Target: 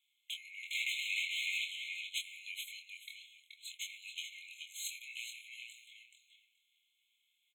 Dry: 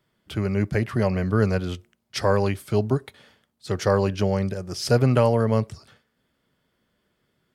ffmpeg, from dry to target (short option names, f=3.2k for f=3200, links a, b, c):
-filter_complex "[0:a]aeval=exprs='if(lt(val(0),0),0.447*val(0),val(0))':c=same,highpass=f=220:w=0.5412,highpass=f=220:w=1.3066,asplit=2[a][b];[b]acompressor=threshold=-40dB:ratio=6,volume=-1dB[c];[a][c]amix=inputs=2:normalize=0,asettb=1/sr,asplit=3[d][e][f];[d]atrim=end=0.634[g];[e]atrim=start=0.63:end=1.64,asetpts=PTS-STARTPTS,afade=t=in:d=0.004:c=qsin,afade=t=out:st=1.006:d=0.004:c=qsin,asplit=2[h][i];[i]highpass=f=720:p=1,volume=37dB,asoftclip=type=tanh:threshold=-14dB[j];[h][j]amix=inputs=2:normalize=0,lowpass=f=2.1k:p=1,volume=-6dB[k];[f]atrim=start=1.636[l];[g][k]acrossfade=d=0.004:c1=hsin:c2=qsin[m];[m][l]acrossfade=d=0.004:c1=qsin:c2=hsin,asplit=2[n][o];[o]adelay=25,volume=-4dB[p];[n][p]amix=inputs=2:normalize=0,asplit=2[q][r];[r]adelay=428,lowpass=f=4.5k:p=1,volume=-4dB,asplit=2[s][t];[t]adelay=428,lowpass=f=4.5k:p=1,volume=0.19,asplit=2[u][v];[v]adelay=428,lowpass=f=4.5k:p=1,volume=0.19[w];[q][s][u][w]amix=inputs=4:normalize=0,afftfilt=real='re*eq(mod(floor(b*sr/1024/2100),2),1)':imag='im*eq(mod(floor(b*sr/1024/2100),2),1)':win_size=1024:overlap=0.75,volume=-4dB"